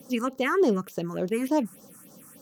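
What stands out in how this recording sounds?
phasing stages 4, 3.4 Hz, lowest notch 530–2400 Hz

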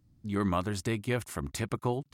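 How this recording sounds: noise floor -68 dBFS; spectral tilt -6.0 dB/octave

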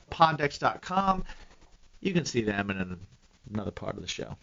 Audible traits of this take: a quantiser's noise floor 10-bit, dither triangular; chopped level 9.3 Hz, depth 60%, duty 35%; MP3

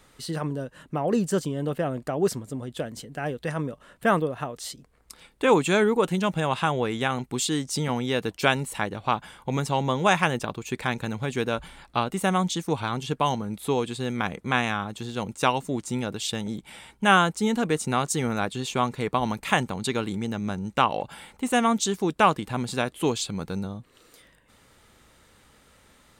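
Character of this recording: noise floor -59 dBFS; spectral tilt -4.5 dB/octave

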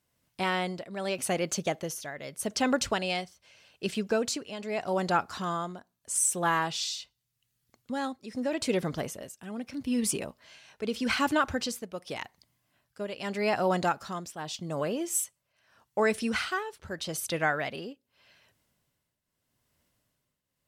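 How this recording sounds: tremolo triangle 0.82 Hz, depth 80%

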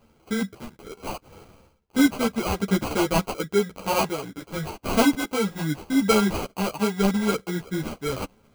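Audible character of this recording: random-step tremolo; aliases and images of a low sample rate 1.8 kHz, jitter 0%; a shimmering, thickened sound

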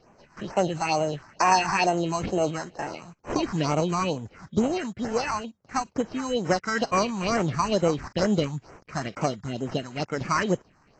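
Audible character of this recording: aliases and images of a low sample rate 3.5 kHz, jitter 0%; phasing stages 4, 2.2 Hz, lowest notch 470–4500 Hz; AAC

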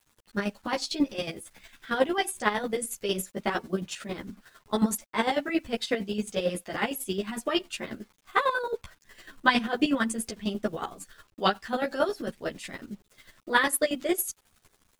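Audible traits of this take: a quantiser's noise floor 10-bit, dither none; chopped level 11 Hz, depth 65%, duty 30%; a shimmering, thickened sound

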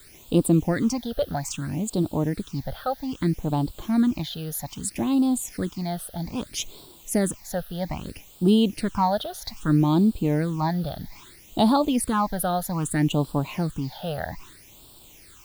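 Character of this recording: a quantiser's noise floor 8-bit, dither triangular; phasing stages 8, 0.62 Hz, lowest notch 290–2000 Hz

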